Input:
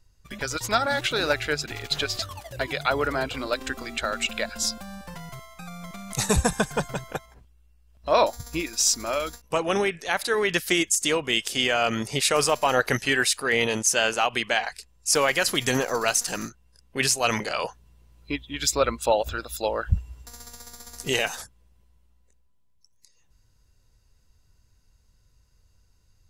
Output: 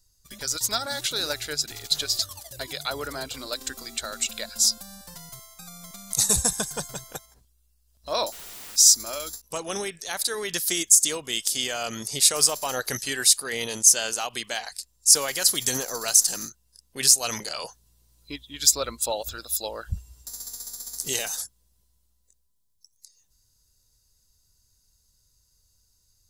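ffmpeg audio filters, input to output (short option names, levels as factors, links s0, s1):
-filter_complex "[0:a]aexciter=amount=6.3:drive=2.9:freq=3700,asettb=1/sr,asplit=3[s0][s1][s2];[s0]atrim=end=8.324[s3];[s1]atrim=start=8.32:end=8.76,asetpts=PTS-STARTPTS,afade=t=in:d=0.004:c=qsin,afade=t=out:st=0.436:d=0.004:c=qsin,aeval=exprs='(mod(26.6*val(0)+1,2)-1)/26.6':c=same[s4];[s2]atrim=start=8.756[s5];[s3][s4]acrossfade=d=0.004:c1=hsin:c2=qsin[s6];[s6][s5]acrossfade=d=0.004:c1=qsin:c2=hsin,volume=0.398"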